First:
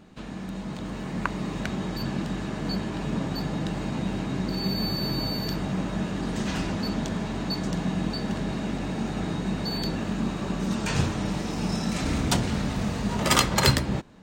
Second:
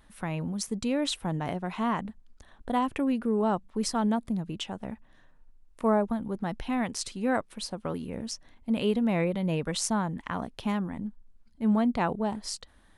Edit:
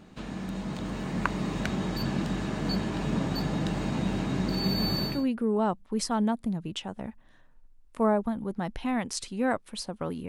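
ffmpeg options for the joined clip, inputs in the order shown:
-filter_complex "[0:a]apad=whole_dur=10.28,atrim=end=10.28,atrim=end=5.27,asetpts=PTS-STARTPTS[s0];[1:a]atrim=start=2.83:end=8.12,asetpts=PTS-STARTPTS[s1];[s0][s1]acrossfade=d=0.28:c1=tri:c2=tri"

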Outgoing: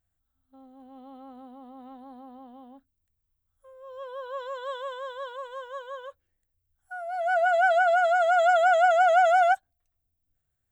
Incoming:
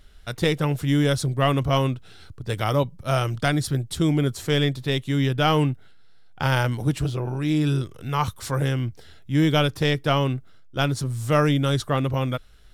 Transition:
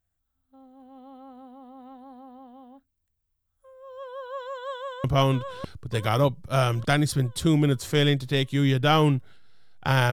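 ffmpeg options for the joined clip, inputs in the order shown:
-filter_complex "[0:a]apad=whole_dur=10.12,atrim=end=10.12,atrim=end=5.042[s0];[1:a]atrim=start=1.588:end=6.67[s1];[s0][s1]acrossfade=d=0.004:c1=hsin:c2=hsin,asplit=2[s2][s3];[s3]afade=t=in:st=4.72:d=0.01,afade=t=out:st=5.04:d=0.01,aecho=0:1:600|1200|1800|2400|3000|3600|4200:0.794328|0.397164|0.198582|0.099291|0.0496455|0.0248228|0.0124114[s4];[s2][s4]amix=inputs=2:normalize=0"

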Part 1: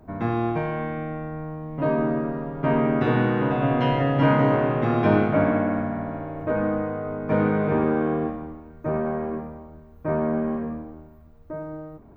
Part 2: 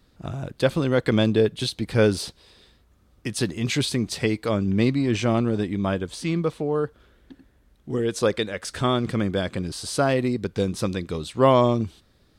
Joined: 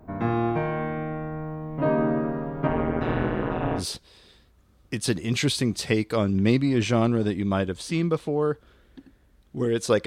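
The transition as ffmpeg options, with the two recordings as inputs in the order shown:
-filter_complex "[0:a]asettb=1/sr,asplit=3[s0][s1][s2];[s0]atrim=end=2.674[s3];[s1]atrim=start=2.67:end=3.83,asetpts=PTS-STARTPTS,afade=t=in:d=0.004:c=qsin,afade=t=out:st=1.156:d=0.004:c=qsin,tremolo=f=170:d=1[s4];[s2]atrim=start=3.826[s5];[s3][s4]acrossfade=d=0.004:c1=hsin:c2=qsin[s6];[s6][s5]acrossfade=d=0.004:c1=qsin:c2=hsin,apad=whole_dur=10.06,atrim=end=10.06,atrim=end=3.83,asetpts=PTS-STARTPTS[s7];[1:a]atrim=start=2.08:end=8.39,asetpts=PTS-STARTPTS[s8];[s7][s8]acrossfade=d=0.08:c1=tri:c2=tri"

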